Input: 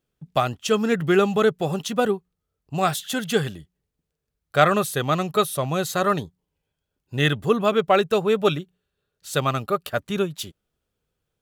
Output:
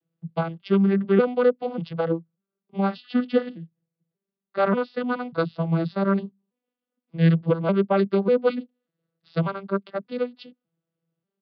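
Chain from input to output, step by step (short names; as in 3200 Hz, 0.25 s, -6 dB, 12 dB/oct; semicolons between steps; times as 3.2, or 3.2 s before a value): arpeggiated vocoder minor triad, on E3, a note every 0.591 s; downsampling 11025 Hz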